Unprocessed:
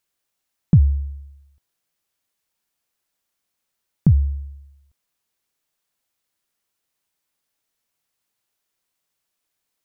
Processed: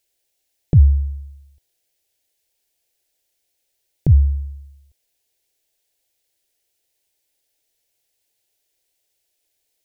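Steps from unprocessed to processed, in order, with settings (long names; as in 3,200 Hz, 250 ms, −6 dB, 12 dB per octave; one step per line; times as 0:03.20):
phaser with its sweep stopped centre 480 Hz, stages 4
level +6.5 dB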